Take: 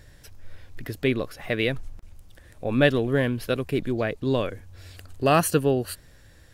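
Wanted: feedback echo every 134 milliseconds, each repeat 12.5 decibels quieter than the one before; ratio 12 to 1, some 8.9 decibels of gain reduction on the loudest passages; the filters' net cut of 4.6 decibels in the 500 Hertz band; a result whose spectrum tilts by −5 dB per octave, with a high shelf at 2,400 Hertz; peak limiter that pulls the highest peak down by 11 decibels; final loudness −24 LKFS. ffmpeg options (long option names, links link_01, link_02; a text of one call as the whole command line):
ffmpeg -i in.wav -af "equalizer=frequency=500:width_type=o:gain=-6,highshelf=frequency=2400:gain=3,acompressor=threshold=-24dB:ratio=12,alimiter=level_in=0.5dB:limit=-24dB:level=0:latency=1,volume=-0.5dB,aecho=1:1:134|268|402:0.237|0.0569|0.0137,volume=11.5dB" out.wav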